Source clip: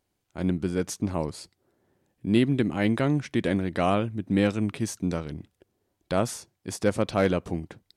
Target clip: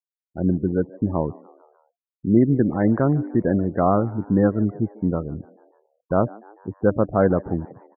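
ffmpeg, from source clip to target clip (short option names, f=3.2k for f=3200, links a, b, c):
-filter_complex "[0:a]lowpass=f=1.5k:w=0.5412,lowpass=f=1.5k:w=1.3066,bandreject=f=297.3:t=h:w=4,bandreject=f=594.6:t=h:w=4,bandreject=f=891.9:t=h:w=4,afftfilt=real='re*gte(hypot(re,im),0.0282)':imag='im*gte(hypot(re,im),0.0282)':win_size=1024:overlap=0.75,asplit=2[a][b];[b]asplit=4[c][d][e][f];[c]adelay=148,afreqshift=100,volume=-23dB[g];[d]adelay=296,afreqshift=200,volume=-28.5dB[h];[e]adelay=444,afreqshift=300,volume=-34dB[i];[f]adelay=592,afreqshift=400,volume=-39.5dB[j];[g][h][i][j]amix=inputs=4:normalize=0[k];[a][k]amix=inputs=2:normalize=0,volume=5.5dB"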